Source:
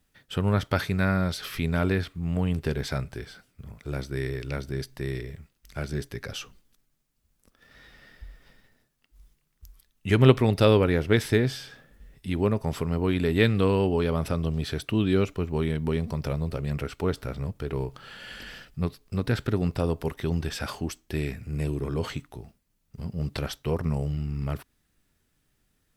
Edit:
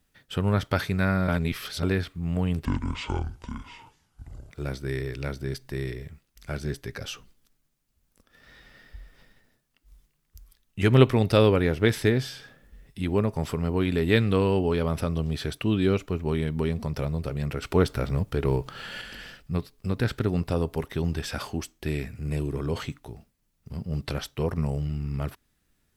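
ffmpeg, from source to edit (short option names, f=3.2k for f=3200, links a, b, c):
-filter_complex "[0:a]asplit=7[a][b][c][d][e][f][g];[a]atrim=end=1.282[h];[b]atrim=start=1.278:end=1.832,asetpts=PTS-STARTPTS,areverse[i];[c]atrim=start=1.828:end=2.654[j];[d]atrim=start=2.65:end=3.78,asetpts=PTS-STARTPTS,asetrate=26901,aresample=44100,atrim=end_sample=81693,asetpts=PTS-STARTPTS[k];[e]atrim=start=3.776:end=16.902[l];[f]atrim=start=16.898:end=18.292,asetpts=PTS-STARTPTS,volume=5.5dB[m];[g]atrim=start=18.288[n];[h][i]acrossfade=d=0.004:c1=hsin:c2=hsin[o];[o][j]acrossfade=d=0.004:c1=hsin:c2=hsin[p];[p][k]acrossfade=d=0.004:c1=hsin:c2=hsin[q];[q][l]acrossfade=d=0.004:c1=hsin:c2=hsin[r];[r][m]acrossfade=d=0.004:c1=hsin:c2=hsin[s];[s][n]acrossfade=d=0.004:c1=hsin:c2=hsin"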